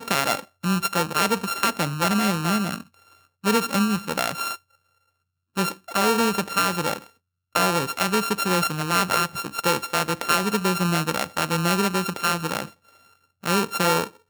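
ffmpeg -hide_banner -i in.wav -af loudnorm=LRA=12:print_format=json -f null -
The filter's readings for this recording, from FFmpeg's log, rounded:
"input_i" : "-23.2",
"input_tp" : "-4.4",
"input_lra" : "2.4",
"input_thresh" : "-33.8",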